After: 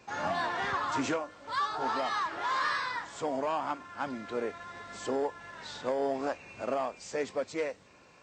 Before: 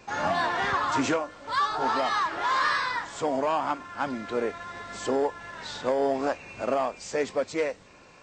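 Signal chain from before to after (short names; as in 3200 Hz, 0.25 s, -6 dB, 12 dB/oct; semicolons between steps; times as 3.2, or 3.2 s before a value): HPF 53 Hz; gain -5.5 dB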